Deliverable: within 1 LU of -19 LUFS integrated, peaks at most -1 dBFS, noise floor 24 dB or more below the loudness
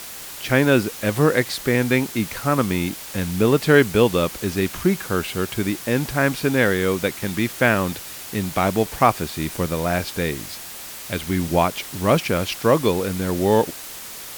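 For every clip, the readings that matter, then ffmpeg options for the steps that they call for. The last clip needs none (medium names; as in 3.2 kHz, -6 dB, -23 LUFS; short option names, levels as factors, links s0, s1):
noise floor -36 dBFS; noise floor target -45 dBFS; loudness -21.0 LUFS; peak level -1.5 dBFS; loudness target -19.0 LUFS
-> -af "afftdn=nr=9:nf=-36"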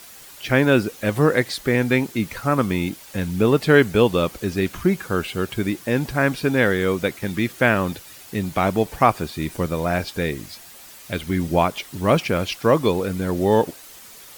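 noise floor -43 dBFS; noise floor target -45 dBFS
-> -af "afftdn=nr=6:nf=-43"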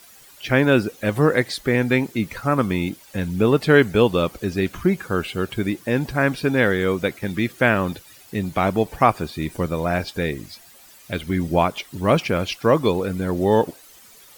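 noise floor -48 dBFS; loudness -21.0 LUFS; peak level -1.5 dBFS; loudness target -19.0 LUFS
-> -af "volume=1.26,alimiter=limit=0.891:level=0:latency=1"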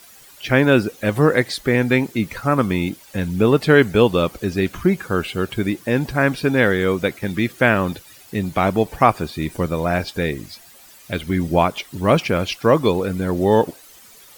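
loudness -19.5 LUFS; peak level -1.0 dBFS; noise floor -46 dBFS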